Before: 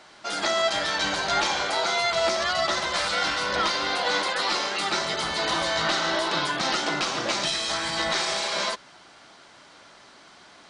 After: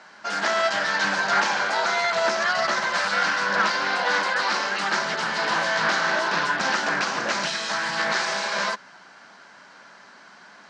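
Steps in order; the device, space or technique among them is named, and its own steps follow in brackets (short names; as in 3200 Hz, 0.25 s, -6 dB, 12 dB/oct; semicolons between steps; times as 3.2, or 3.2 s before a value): full-range speaker at full volume (Doppler distortion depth 0.41 ms; speaker cabinet 160–7400 Hz, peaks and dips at 200 Hz +7 dB, 330 Hz -5 dB, 960 Hz +4 dB, 1600 Hz +9 dB, 3500 Hz -6 dB)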